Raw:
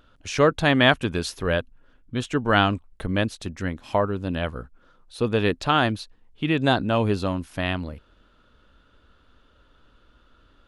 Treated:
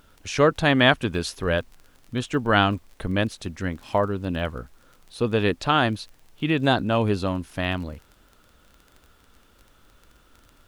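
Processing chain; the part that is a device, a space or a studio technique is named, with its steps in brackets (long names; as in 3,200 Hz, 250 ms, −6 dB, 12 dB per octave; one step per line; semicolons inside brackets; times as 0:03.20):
vinyl LP (surface crackle 22 per second −36 dBFS; pink noise bed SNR 37 dB)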